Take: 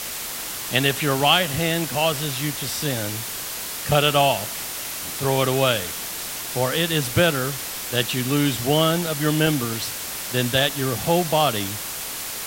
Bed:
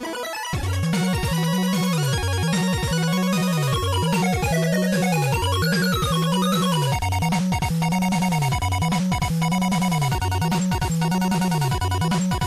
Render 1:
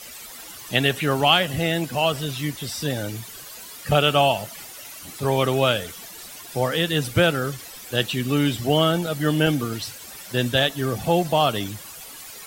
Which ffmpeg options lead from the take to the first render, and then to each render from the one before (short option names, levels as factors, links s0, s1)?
-af "afftdn=nr=13:nf=-31"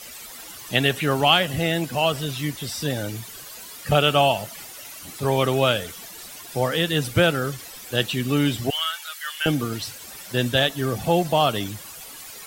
-filter_complex "[0:a]asettb=1/sr,asplit=3[s0][s1][s2];[s0]atrim=end=8.704[s3];[s1]atrim=start=8.7:end=9.46,asetpts=PTS-STARTPTS,afade=t=in:d=0.004:c=qsin,afade=t=out:st=0.756:d=0.004:c=qsin,highpass=f=1300:w=0.5412,highpass=f=1300:w=1.3066[s4];[s2]atrim=start=9.456[s5];[s3][s4]acrossfade=d=0.004:c1=hsin:c2=qsin[s6];[s6][s5]acrossfade=d=0.004:c1=qsin:c2=hsin"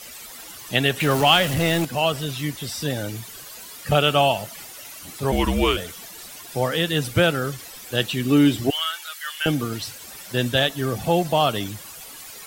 -filter_complex "[0:a]asettb=1/sr,asplit=3[s0][s1][s2];[s0]atrim=end=1.004[s3];[s1]atrim=start=1:end=1.85,asetpts=PTS-STARTPTS,afade=t=in:d=0.004:c=qsin,afade=t=out:st=0.846:d=0.004:c=qsin,aeval=exprs='val(0)+0.5*0.0596*sgn(val(0))':c=same[s4];[s2]atrim=start=1.846[s5];[s3][s4]acrossfade=d=0.004:c1=hsin:c2=qsin[s6];[s6][s5]acrossfade=d=0.004:c1=qsin:c2=hsin,asplit=3[s7][s8][s9];[s7]afade=t=out:st=5.31:d=0.02[s10];[s8]afreqshift=-190,afade=t=in:st=5.31:d=0.02,afade=t=out:st=5.76:d=0.02[s11];[s9]afade=t=in:st=5.76:d=0.02[s12];[s10][s11][s12]amix=inputs=3:normalize=0,asettb=1/sr,asplit=3[s13][s14][s15];[s13]atrim=end=8.234[s16];[s14]atrim=start=8.23:end=9.17,asetpts=PTS-STARTPTS,afade=t=in:d=0.004:c=qsin,afade=t=out:st=0.936:d=0.004:c=qsin,equalizer=f=320:w=2.4:g=8.5[s17];[s15]atrim=start=9.166[s18];[s16][s17]acrossfade=d=0.004:c1=hsin:c2=qsin[s19];[s19][s18]acrossfade=d=0.004:c1=qsin:c2=hsin"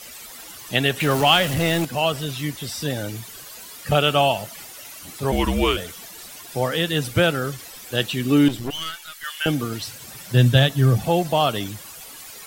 -filter_complex "[0:a]asettb=1/sr,asplit=3[s0][s1][s2];[s0]atrim=end=8.484[s3];[s1]atrim=start=8.48:end=9.24,asetpts=PTS-STARTPTS,afade=t=in:d=0.004:c=qsin,afade=t=out:st=0.756:d=0.004:c=qsin,aeval=exprs='(tanh(14.1*val(0)+0.65)-tanh(0.65))/14.1':c=same[s4];[s2]atrim=start=9.236[s5];[s3][s4]acrossfade=d=0.004:c1=hsin:c2=qsin[s6];[s6][s5]acrossfade=d=0.004:c1=qsin:c2=hsin,asettb=1/sr,asplit=3[s7][s8][s9];[s7]atrim=end=9.934[s10];[s8]atrim=start=9.93:end=11,asetpts=PTS-STARTPTS,afade=t=in:d=0.004:c=qsin,afade=t=out:st=1.066:d=0.004:c=qsin,equalizer=f=130:w=1.4:g=13[s11];[s9]atrim=start=10.996[s12];[s10][s11]acrossfade=d=0.004:c1=hsin:c2=qsin[s13];[s13][s12]acrossfade=d=0.004:c1=qsin:c2=hsin"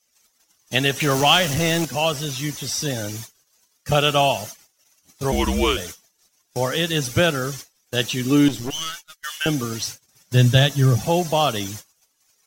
-af "agate=range=0.0251:threshold=0.0178:ratio=16:detection=peak,equalizer=f=6000:t=o:w=0.45:g=11"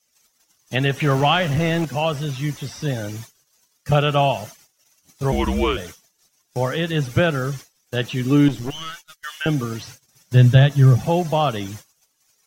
-filter_complex "[0:a]acrossover=split=2900[s0][s1];[s1]acompressor=threshold=0.00891:ratio=4:attack=1:release=60[s2];[s0][s2]amix=inputs=2:normalize=0,equalizer=f=140:t=o:w=0.41:g=5.5"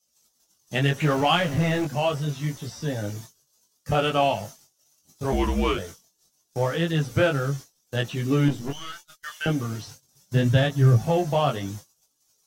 -filter_complex "[0:a]acrossover=split=2700[s0][s1];[s0]adynamicsmooth=sensitivity=6.5:basefreq=1400[s2];[s2][s1]amix=inputs=2:normalize=0,flanger=delay=17.5:depth=4:speed=0.74"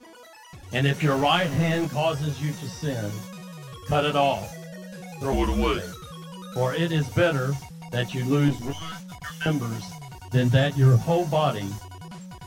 -filter_complex "[1:a]volume=0.112[s0];[0:a][s0]amix=inputs=2:normalize=0"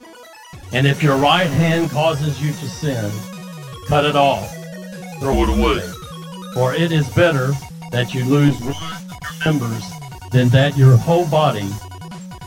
-af "volume=2.37,alimiter=limit=0.891:level=0:latency=1"